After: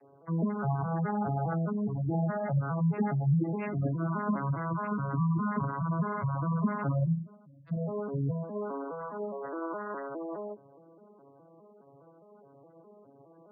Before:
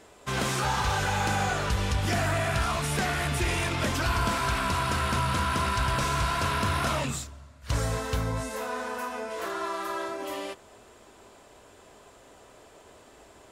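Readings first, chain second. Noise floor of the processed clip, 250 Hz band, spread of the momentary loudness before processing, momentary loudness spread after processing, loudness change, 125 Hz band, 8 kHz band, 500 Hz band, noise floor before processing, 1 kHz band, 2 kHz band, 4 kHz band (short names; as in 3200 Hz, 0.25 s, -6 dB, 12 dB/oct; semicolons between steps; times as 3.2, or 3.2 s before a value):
-58 dBFS, +3.5 dB, 8 LU, 9 LU, -3.5 dB, +0.5 dB, under -40 dB, -3.0 dB, -54 dBFS, -7.5 dB, -14.0 dB, under -40 dB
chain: arpeggiated vocoder minor triad, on C#3, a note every 0.207 s; spectral gate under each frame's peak -15 dB strong; de-hum 198.8 Hz, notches 5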